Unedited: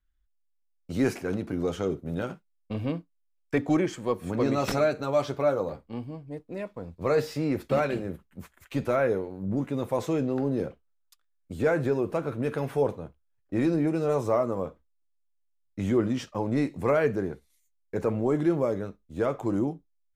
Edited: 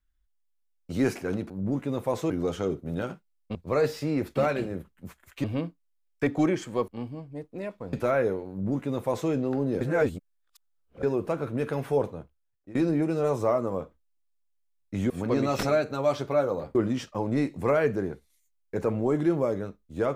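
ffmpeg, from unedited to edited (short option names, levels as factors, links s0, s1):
-filter_complex "[0:a]asplit=12[s0][s1][s2][s3][s4][s5][s6][s7][s8][s9][s10][s11];[s0]atrim=end=1.502[s12];[s1]atrim=start=9.348:end=10.152[s13];[s2]atrim=start=1.498:end=2.752[s14];[s3]atrim=start=6.888:end=8.782[s15];[s4]atrim=start=2.748:end=4.192[s16];[s5]atrim=start=5.838:end=6.892[s17];[s6]atrim=start=8.778:end=10.662[s18];[s7]atrim=start=10.658:end=11.882,asetpts=PTS-STARTPTS,areverse[s19];[s8]atrim=start=11.878:end=13.6,asetpts=PTS-STARTPTS,afade=t=out:st=1.012:d=0.71:c=qsin:silence=0.0749894[s20];[s9]atrim=start=13.6:end=15.952,asetpts=PTS-STARTPTS,afade=t=in:d=0.004:c=hsin:silence=0.0749894[s21];[s10]atrim=start=4.188:end=5.842[s22];[s11]atrim=start=15.948[s23];[s12][s13]acrossfade=d=0.004:c1=hsin:c2=hsin[s24];[s24][s14]acrossfade=d=0.004:c1=hsin:c2=hsin[s25];[s25][s15]acrossfade=d=0.004:c1=hsin:c2=hsin[s26];[s26][s16]acrossfade=d=0.004:c1=hsin:c2=hsin[s27];[s27][s17]acrossfade=d=0.004:c1=hsin:c2=hsin[s28];[s28][s18]acrossfade=d=0.004:c1=hsin:c2=hsin[s29];[s29][s19]acrossfade=d=0.004:c1=hsin:c2=hsin[s30];[s20][s21]concat=n=2:v=0:a=1[s31];[s30][s31]acrossfade=d=0.004:c1=hsin:c2=hsin[s32];[s32][s22]acrossfade=d=0.004:c1=hsin:c2=hsin[s33];[s33][s23]acrossfade=d=0.004:c1=hsin:c2=hsin"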